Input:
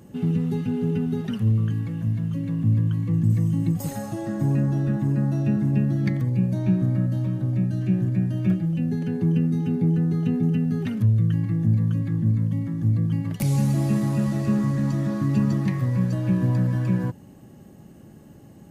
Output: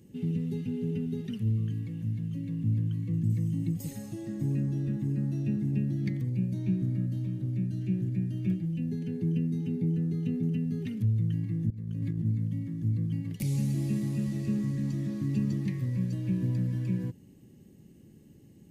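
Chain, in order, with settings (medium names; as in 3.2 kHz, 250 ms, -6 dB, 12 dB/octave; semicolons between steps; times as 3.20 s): high-order bell 960 Hz -12.5 dB; 11.70–12.25 s: compressor with a negative ratio -25 dBFS, ratio -0.5; trim -7.5 dB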